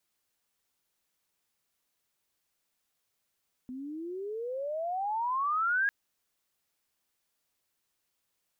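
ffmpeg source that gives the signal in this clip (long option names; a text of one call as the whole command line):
ffmpeg -f lavfi -i "aevalsrc='pow(10,(-24+13.5*(t/2.2-1))/20)*sin(2*PI*248*2.2/(33*log(2)/12)*(exp(33*log(2)/12*t/2.2)-1))':duration=2.2:sample_rate=44100" out.wav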